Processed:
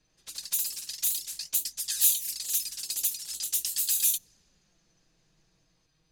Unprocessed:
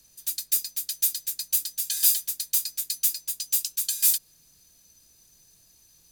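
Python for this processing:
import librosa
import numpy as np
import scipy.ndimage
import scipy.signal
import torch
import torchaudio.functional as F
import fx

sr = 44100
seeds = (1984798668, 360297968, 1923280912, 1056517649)

y = fx.env_flanger(x, sr, rest_ms=6.8, full_db=-22.0)
y = fx.echo_pitch(y, sr, ms=94, semitones=1, count=3, db_per_echo=-3.0)
y = fx.env_lowpass(y, sr, base_hz=2700.0, full_db=-23.0)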